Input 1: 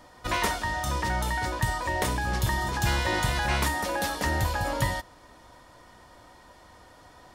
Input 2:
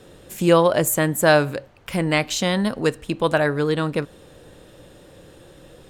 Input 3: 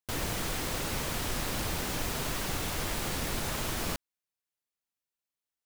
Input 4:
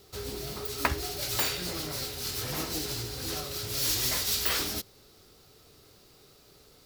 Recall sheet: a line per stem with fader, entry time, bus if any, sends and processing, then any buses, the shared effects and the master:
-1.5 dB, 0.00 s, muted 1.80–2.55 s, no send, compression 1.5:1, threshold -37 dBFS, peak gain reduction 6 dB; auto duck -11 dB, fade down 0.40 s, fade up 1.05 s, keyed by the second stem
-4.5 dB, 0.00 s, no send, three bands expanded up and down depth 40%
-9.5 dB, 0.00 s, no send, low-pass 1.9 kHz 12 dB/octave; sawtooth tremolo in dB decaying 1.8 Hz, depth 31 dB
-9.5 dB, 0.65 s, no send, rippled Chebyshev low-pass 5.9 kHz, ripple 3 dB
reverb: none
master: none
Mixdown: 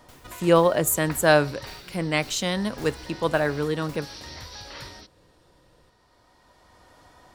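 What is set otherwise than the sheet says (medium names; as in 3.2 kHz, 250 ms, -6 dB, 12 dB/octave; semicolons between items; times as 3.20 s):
stem 3: missing low-pass 1.9 kHz 12 dB/octave; stem 4: entry 0.65 s -> 0.25 s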